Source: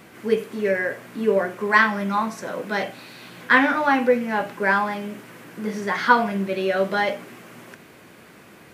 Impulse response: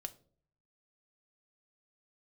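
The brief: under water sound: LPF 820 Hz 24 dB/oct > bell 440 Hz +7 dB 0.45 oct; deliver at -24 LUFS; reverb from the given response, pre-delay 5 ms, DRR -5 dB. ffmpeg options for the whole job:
-filter_complex "[0:a]asplit=2[a][b];[1:a]atrim=start_sample=2205,adelay=5[c];[b][c]afir=irnorm=-1:irlink=0,volume=8dB[d];[a][d]amix=inputs=2:normalize=0,lowpass=f=820:w=0.5412,lowpass=f=820:w=1.3066,equalizer=f=440:t=o:w=0.45:g=7,volume=-8.5dB"

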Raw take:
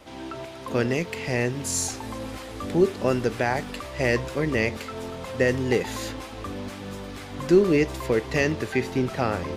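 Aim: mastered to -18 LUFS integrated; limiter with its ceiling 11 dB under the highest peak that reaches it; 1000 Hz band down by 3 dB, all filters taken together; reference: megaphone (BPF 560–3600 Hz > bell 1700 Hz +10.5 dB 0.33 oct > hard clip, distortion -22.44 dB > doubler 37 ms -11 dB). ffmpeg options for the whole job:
-filter_complex "[0:a]equalizer=f=1k:t=o:g=-4,alimiter=limit=-18.5dB:level=0:latency=1,highpass=560,lowpass=3.6k,equalizer=f=1.7k:t=o:w=0.33:g=10.5,asoftclip=type=hard:threshold=-23dB,asplit=2[a][b];[b]adelay=37,volume=-11dB[c];[a][c]amix=inputs=2:normalize=0,volume=16.5dB"

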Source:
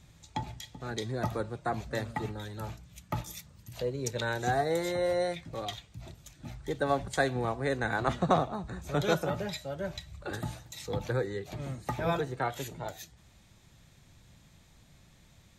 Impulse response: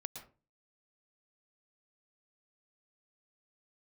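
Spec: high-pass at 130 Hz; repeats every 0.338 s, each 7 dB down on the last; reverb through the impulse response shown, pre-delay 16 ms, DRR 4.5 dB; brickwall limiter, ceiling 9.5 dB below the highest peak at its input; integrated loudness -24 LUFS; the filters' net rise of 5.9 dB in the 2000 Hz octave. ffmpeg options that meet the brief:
-filter_complex "[0:a]highpass=130,equalizer=f=2k:t=o:g=8,alimiter=limit=-19dB:level=0:latency=1,aecho=1:1:338|676|1014|1352|1690:0.447|0.201|0.0905|0.0407|0.0183,asplit=2[a][b];[1:a]atrim=start_sample=2205,adelay=16[c];[b][c]afir=irnorm=-1:irlink=0,volume=-2dB[d];[a][d]amix=inputs=2:normalize=0,volume=7.5dB"

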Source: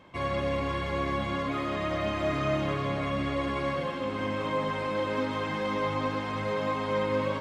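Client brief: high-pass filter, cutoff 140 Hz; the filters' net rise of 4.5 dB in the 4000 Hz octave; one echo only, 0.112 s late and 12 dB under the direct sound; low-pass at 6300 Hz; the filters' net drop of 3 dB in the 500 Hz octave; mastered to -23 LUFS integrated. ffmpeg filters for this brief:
-af "highpass=140,lowpass=6.3k,equalizer=f=500:t=o:g=-3.5,equalizer=f=4k:t=o:g=6.5,aecho=1:1:112:0.251,volume=8dB"

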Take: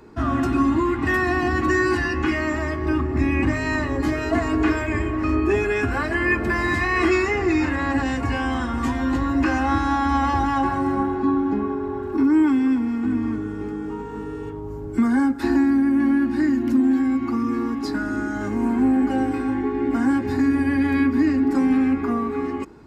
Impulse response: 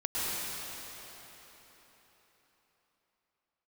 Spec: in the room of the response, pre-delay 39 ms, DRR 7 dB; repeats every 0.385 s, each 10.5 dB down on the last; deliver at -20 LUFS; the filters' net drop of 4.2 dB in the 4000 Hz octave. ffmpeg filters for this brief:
-filter_complex "[0:a]equalizer=f=4k:t=o:g=-6,aecho=1:1:385|770|1155:0.299|0.0896|0.0269,asplit=2[a][b];[1:a]atrim=start_sample=2205,adelay=39[c];[b][c]afir=irnorm=-1:irlink=0,volume=-16dB[d];[a][d]amix=inputs=2:normalize=0,volume=0.5dB"

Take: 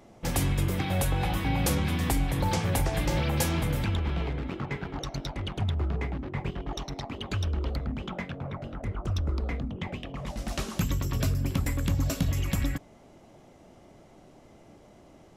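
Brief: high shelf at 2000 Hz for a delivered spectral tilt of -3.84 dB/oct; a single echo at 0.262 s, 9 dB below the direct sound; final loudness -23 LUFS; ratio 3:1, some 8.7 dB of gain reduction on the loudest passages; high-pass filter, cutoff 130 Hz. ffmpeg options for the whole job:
-af "highpass=130,highshelf=f=2k:g=8.5,acompressor=threshold=-31dB:ratio=3,aecho=1:1:262:0.355,volume=11dB"

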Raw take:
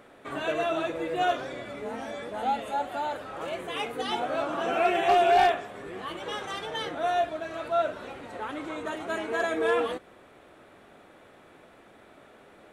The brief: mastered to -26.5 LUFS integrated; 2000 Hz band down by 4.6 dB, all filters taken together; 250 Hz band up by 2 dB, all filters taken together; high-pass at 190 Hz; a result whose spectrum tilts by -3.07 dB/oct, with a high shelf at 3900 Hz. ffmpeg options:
-af "highpass=190,equalizer=f=250:t=o:g=4,equalizer=f=2k:t=o:g=-8.5,highshelf=f=3.9k:g=8.5,volume=2.5dB"

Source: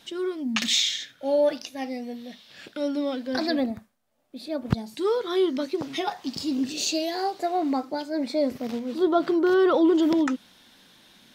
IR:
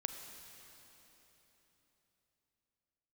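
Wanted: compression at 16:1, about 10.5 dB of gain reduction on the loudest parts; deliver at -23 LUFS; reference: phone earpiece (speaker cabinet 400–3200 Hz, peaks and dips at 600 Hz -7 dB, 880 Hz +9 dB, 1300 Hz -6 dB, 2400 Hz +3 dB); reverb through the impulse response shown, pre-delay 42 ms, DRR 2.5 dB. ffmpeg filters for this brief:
-filter_complex "[0:a]acompressor=threshold=-26dB:ratio=16,asplit=2[a][b];[1:a]atrim=start_sample=2205,adelay=42[c];[b][c]afir=irnorm=-1:irlink=0,volume=-2.5dB[d];[a][d]amix=inputs=2:normalize=0,highpass=400,equalizer=f=600:t=q:w=4:g=-7,equalizer=f=880:t=q:w=4:g=9,equalizer=f=1.3k:t=q:w=4:g=-6,equalizer=f=2.4k:t=q:w=4:g=3,lowpass=f=3.2k:w=0.5412,lowpass=f=3.2k:w=1.3066,volume=10.5dB"

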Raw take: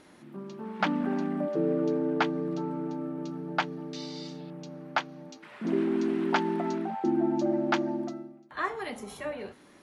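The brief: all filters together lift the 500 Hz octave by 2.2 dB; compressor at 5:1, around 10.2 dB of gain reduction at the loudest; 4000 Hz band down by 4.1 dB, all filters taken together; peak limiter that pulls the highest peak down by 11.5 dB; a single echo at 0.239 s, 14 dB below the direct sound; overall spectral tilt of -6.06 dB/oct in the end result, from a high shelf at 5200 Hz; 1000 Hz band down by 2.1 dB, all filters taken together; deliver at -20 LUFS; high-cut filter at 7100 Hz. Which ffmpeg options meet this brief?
-af "lowpass=7.1k,equalizer=f=500:t=o:g=4,equalizer=f=1k:t=o:g=-4,equalizer=f=4k:t=o:g=-8,highshelf=f=5.2k:g=7,acompressor=threshold=-33dB:ratio=5,alimiter=level_in=6dB:limit=-24dB:level=0:latency=1,volume=-6dB,aecho=1:1:239:0.2,volume=19.5dB"

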